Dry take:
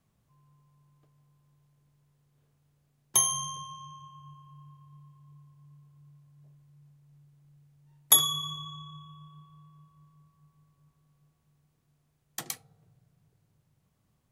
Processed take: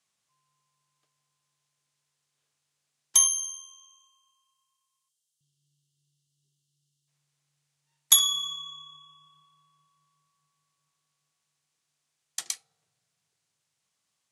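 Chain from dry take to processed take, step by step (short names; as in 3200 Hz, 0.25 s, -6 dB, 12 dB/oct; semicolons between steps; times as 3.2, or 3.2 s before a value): weighting filter ITU-R 468; 5.09–7.08 spectral delete 420–2700 Hz; 3.27–5.41 differentiator; gain -5.5 dB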